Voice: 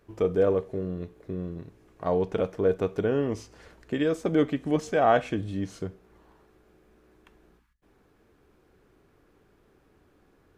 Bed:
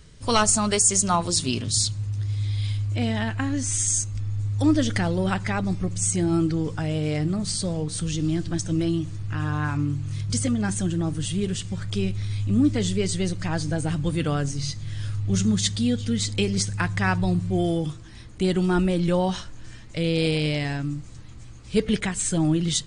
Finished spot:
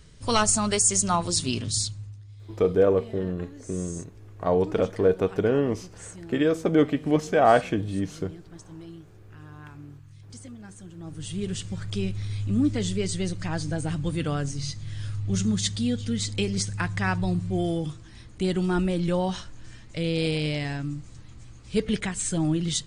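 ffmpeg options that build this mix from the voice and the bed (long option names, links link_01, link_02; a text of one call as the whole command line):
ffmpeg -i stem1.wav -i stem2.wav -filter_complex "[0:a]adelay=2400,volume=3dB[link_01];[1:a]volume=14dB,afade=type=out:start_time=1.65:duration=0.56:silence=0.141254,afade=type=in:start_time=10.95:duration=0.6:silence=0.158489[link_02];[link_01][link_02]amix=inputs=2:normalize=0" out.wav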